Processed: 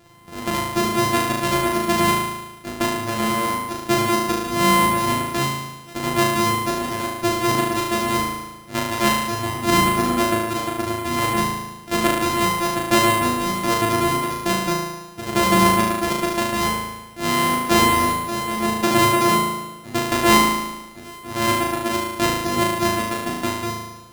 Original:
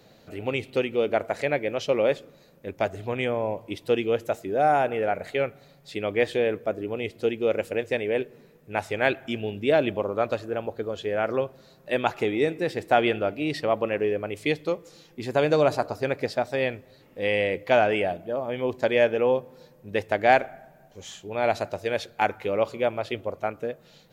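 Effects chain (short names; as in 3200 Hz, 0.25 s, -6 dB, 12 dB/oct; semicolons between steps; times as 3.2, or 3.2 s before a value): sample sorter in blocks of 128 samples; flutter echo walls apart 6.3 m, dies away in 1.1 s; gain +2.5 dB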